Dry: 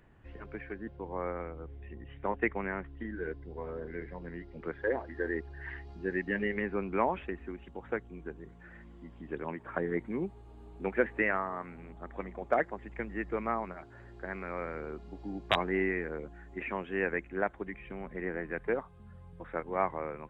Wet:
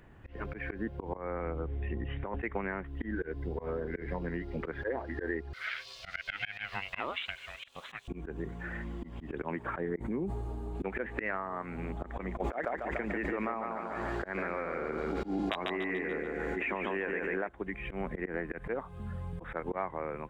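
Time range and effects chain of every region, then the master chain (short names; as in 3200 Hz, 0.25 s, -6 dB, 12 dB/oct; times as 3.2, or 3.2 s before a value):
1.17–2.4 negative-ratio compressor -41 dBFS + air absorption 110 m
5.53–8.08 HPF 1100 Hz + resonant high shelf 2400 Hz +13 dB, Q 1.5 + ring modulator 300 Hz
9.89–10.75 bell 2800 Hz -8 dB 1.6 oct + sustainer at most 49 dB/s
12.4–17.49 bell 100 Hz -14.5 dB 1 oct + feedback echo 0.144 s, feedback 39%, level -5 dB + backwards sustainer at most 26 dB/s
whole clip: AGC gain up to 7.5 dB; auto swell 0.149 s; compressor 6:1, threshold -37 dBFS; gain +5 dB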